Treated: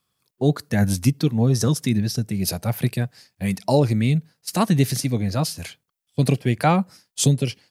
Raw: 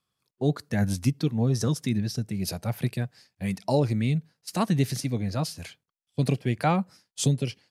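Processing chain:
high-shelf EQ 11,000 Hz +8.5 dB
level +5.5 dB

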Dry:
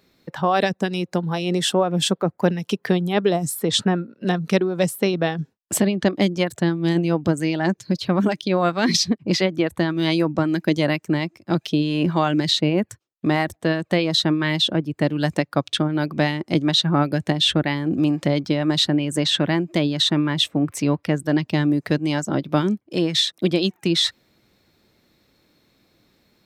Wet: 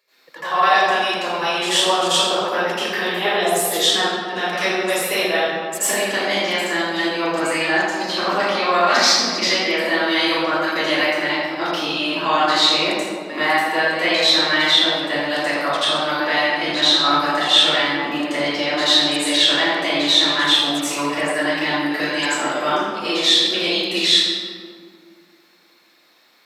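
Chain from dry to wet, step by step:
high-pass filter 830 Hz 12 dB per octave
in parallel at 0 dB: brickwall limiter −17 dBFS, peak gain reduction 11.5 dB
on the sum: convolution reverb RT60 2.0 s, pre-delay 79 ms, DRR −16 dB
level −15 dB

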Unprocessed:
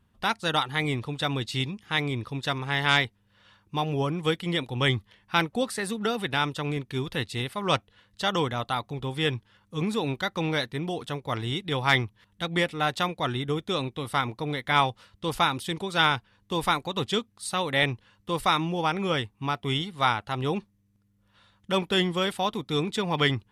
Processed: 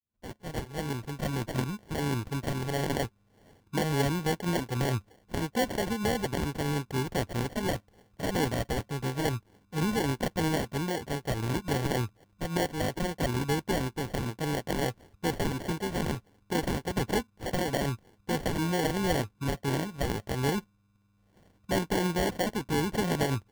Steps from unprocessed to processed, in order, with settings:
fade in at the beginning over 1.77 s
brickwall limiter −18 dBFS, peak gain reduction 10 dB
decimation without filtering 35×

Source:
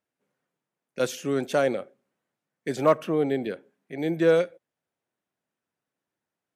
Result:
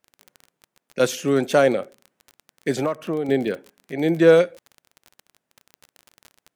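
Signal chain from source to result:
0:02.76–0:03.29: downward compressor 16 to 1, threshold −27 dBFS, peak gain reduction 14 dB
surface crackle 31 per second −36 dBFS
level +6.5 dB

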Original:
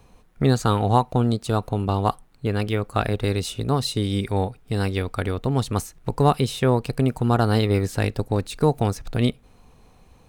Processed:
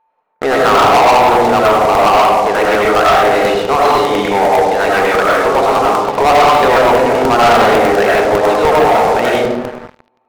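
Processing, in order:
flat-topped band-pass 1,100 Hz, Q 0.73
steady tone 890 Hz −49 dBFS
convolution reverb RT60 1.5 s, pre-delay 55 ms, DRR −4.5 dB
leveller curve on the samples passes 5
regular buffer underruns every 0.10 s, samples 64, repeat

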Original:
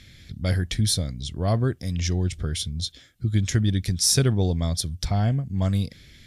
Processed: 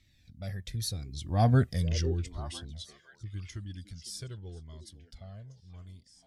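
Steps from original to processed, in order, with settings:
source passing by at 0:01.60, 20 m/s, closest 3.2 metres
echo through a band-pass that steps 504 ms, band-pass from 350 Hz, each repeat 1.4 octaves, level −8 dB
flanger whose copies keep moving one way falling 0.84 Hz
level +6 dB

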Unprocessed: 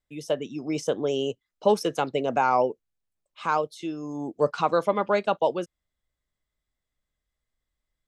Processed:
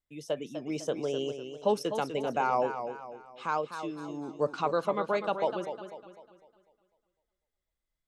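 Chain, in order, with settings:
feedback echo with a swinging delay time 250 ms, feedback 41%, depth 89 cents, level −9 dB
level −6 dB

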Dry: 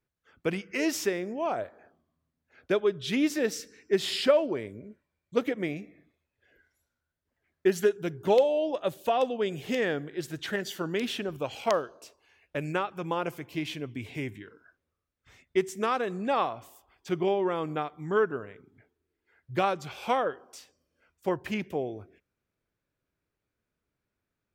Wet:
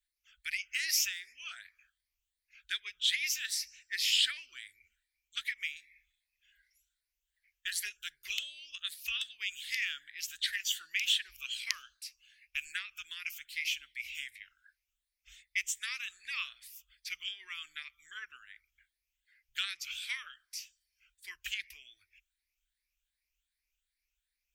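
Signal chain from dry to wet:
rippled gain that drifts along the octave scale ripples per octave 0.83, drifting +2.6 Hz, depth 10 dB
harmonic and percussive parts rebalanced percussive +5 dB
inverse Chebyshev band-stop filter 110–900 Hz, stop band 50 dB

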